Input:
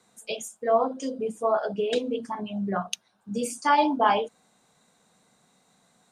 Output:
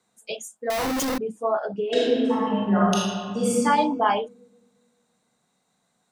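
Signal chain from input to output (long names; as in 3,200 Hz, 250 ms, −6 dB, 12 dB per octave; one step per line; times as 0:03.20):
0:00.70–0:01.18: sign of each sample alone
noise reduction from a noise print of the clip's start 7 dB
0:01.87–0:03.60: thrown reverb, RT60 1.7 s, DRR −7.5 dB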